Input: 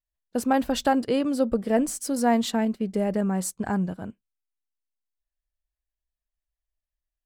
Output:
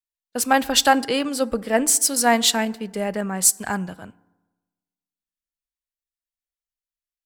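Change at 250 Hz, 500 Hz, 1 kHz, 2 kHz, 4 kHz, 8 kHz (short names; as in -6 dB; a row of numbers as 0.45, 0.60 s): -1.5, +2.0, +6.0, +10.5, +13.5, +15.5 dB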